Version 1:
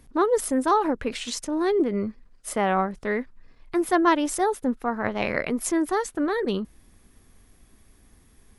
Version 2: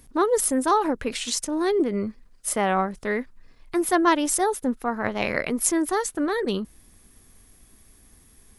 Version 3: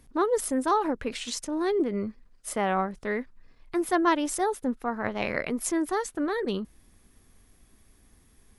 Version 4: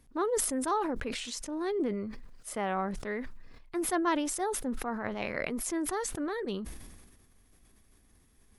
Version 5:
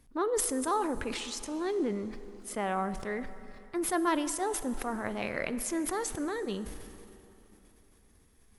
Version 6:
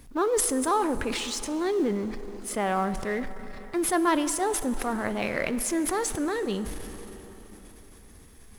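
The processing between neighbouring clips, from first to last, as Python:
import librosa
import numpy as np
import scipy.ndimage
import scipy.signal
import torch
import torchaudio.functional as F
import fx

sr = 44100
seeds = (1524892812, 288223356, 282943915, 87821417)

y1 = fx.high_shelf(x, sr, hz=5200.0, db=9.5)
y2 = fx.high_shelf(y1, sr, hz=6400.0, db=-8.0)
y2 = y2 * 10.0 ** (-3.5 / 20.0)
y3 = fx.sustainer(y2, sr, db_per_s=40.0)
y3 = y3 * 10.0 ** (-6.0 / 20.0)
y4 = fx.rev_plate(y3, sr, seeds[0], rt60_s=3.4, hf_ratio=0.75, predelay_ms=0, drr_db=12.5)
y5 = fx.law_mismatch(y4, sr, coded='mu')
y5 = y5 * 10.0 ** (4.0 / 20.0)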